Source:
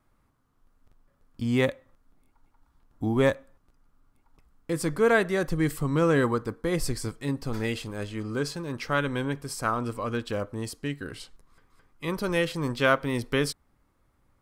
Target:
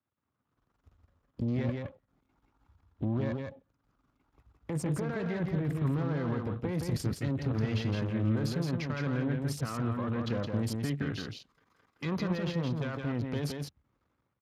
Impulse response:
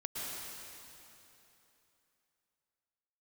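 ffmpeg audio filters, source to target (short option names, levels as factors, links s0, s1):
-filter_complex "[0:a]aeval=exprs='if(lt(val(0),0),0.251*val(0),val(0))':c=same,dynaudnorm=f=100:g=9:m=6.68,asettb=1/sr,asplit=3[s0][s1][s2];[s0]atrim=end=10.074[s3];[s1]atrim=start=10.07:end=12.19,asetpts=PTS-STARTPTS,afade=t=in:d=0.004:c=qsin,afade=t=out:st=2.116:d=0.004:c=qsin,lowshelf=f=120:g=-7.5[s4];[s2]atrim=start=12.186[s5];[s3][s4]acrossfade=d=0.004:c1=hsin:c2=qsin[s6];[s6][s5]acrossfade=d=0.004:c1=qsin:c2=hsin,afwtdn=0.0178,alimiter=limit=0.158:level=0:latency=1:release=18,acrossover=split=200[s7][s8];[s8]acompressor=threshold=0.00126:ratio=1.5[s9];[s7][s9]amix=inputs=2:normalize=0,aeval=exprs='0.141*sin(PI/2*1.58*val(0)/0.141)':c=same,equalizer=f=12000:w=5.8:g=3.5,aecho=1:1:167:0.631,volume=0.447" -ar 32000 -c:a libspeex -b:a 36k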